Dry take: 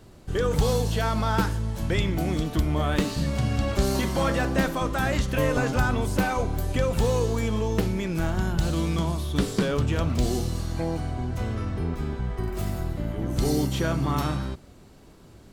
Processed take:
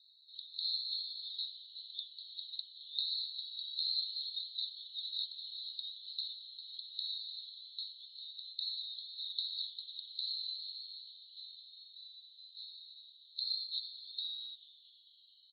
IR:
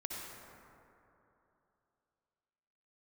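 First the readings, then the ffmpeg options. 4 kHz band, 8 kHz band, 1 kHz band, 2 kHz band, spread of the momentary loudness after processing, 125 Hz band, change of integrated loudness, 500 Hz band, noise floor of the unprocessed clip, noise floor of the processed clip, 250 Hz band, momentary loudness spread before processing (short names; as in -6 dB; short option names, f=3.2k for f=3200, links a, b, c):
+1.0 dB, under -40 dB, under -40 dB, under -40 dB, 15 LU, under -40 dB, -13.5 dB, under -40 dB, -50 dBFS, -63 dBFS, under -40 dB, 6 LU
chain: -filter_complex "[0:a]asuperpass=centerf=4000:order=8:qfactor=6.5,asplit=2[a][b];[b]asplit=5[c][d][e][f][g];[c]adelay=221,afreqshift=-150,volume=-19.5dB[h];[d]adelay=442,afreqshift=-300,volume=-23.7dB[i];[e]adelay=663,afreqshift=-450,volume=-27.8dB[j];[f]adelay=884,afreqshift=-600,volume=-32dB[k];[g]adelay=1105,afreqshift=-750,volume=-36.1dB[l];[h][i][j][k][l]amix=inputs=5:normalize=0[m];[a][m]amix=inputs=2:normalize=0,volume=8.5dB"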